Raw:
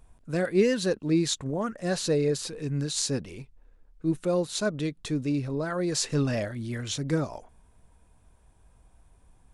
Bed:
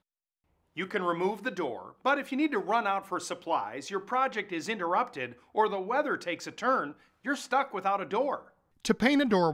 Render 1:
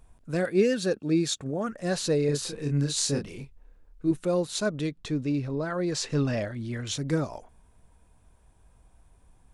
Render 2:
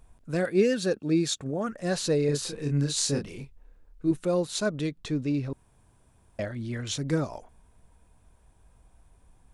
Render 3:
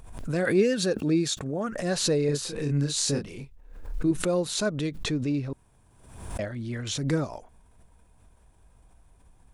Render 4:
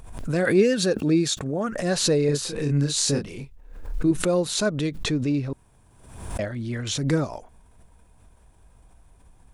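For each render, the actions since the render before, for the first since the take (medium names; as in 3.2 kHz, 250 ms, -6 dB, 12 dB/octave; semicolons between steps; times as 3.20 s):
0.50–1.67 s: comb of notches 1 kHz; 2.26–4.11 s: doubling 28 ms -4 dB; 4.91–6.87 s: distance through air 55 m
5.53–6.39 s: room tone
swell ahead of each attack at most 64 dB/s
trim +3.5 dB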